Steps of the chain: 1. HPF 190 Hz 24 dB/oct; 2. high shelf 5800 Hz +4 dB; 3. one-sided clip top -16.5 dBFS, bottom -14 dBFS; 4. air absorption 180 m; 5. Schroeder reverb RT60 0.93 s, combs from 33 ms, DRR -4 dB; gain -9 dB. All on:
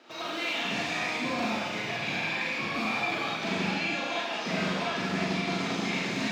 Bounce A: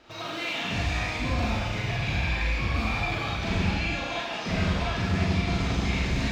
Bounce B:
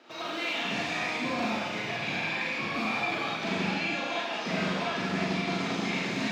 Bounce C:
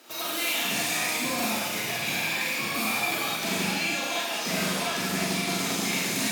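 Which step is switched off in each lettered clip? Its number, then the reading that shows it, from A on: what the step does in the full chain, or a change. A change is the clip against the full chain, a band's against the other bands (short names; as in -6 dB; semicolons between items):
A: 1, 125 Hz band +12.0 dB; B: 2, 8 kHz band -2.0 dB; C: 4, 8 kHz band +14.0 dB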